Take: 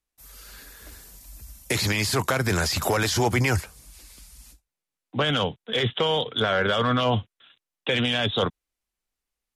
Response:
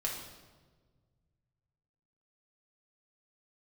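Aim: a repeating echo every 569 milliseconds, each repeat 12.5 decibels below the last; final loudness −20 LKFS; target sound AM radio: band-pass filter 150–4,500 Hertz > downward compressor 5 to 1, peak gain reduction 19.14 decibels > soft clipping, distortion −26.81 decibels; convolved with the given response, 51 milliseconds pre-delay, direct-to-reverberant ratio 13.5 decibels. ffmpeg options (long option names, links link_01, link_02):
-filter_complex "[0:a]aecho=1:1:569|1138|1707:0.237|0.0569|0.0137,asplit=2[link_01][link_02];[1:a]atrim=start_sample=2205,adelay=51[link_03];[link_02][link_03]afir=irnorm=-1:irlink=0,volume=-16.5dB[link_04];[link_01][link_04]amix=inputs=2:normalize=0,highpass=150,lowpass=4500,acompressor=threshold=-40dB:ratio=5,asoftclip=threshold=-27dB,volume=22.5dB"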